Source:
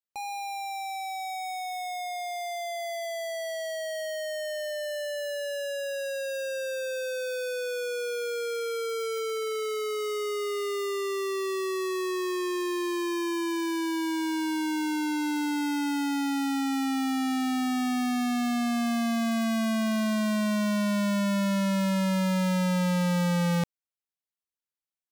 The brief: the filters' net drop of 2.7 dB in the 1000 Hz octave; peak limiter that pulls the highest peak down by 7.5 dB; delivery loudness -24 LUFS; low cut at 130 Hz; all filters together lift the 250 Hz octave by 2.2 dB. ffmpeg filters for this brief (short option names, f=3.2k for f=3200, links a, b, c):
-af "highpass=130,equalizer=f=250:t=o:g=3.5,equalizer=f=1k:t=o:g=-4,volume=7dB,alimiter=limit=-17.5dB:level=0:latency=1"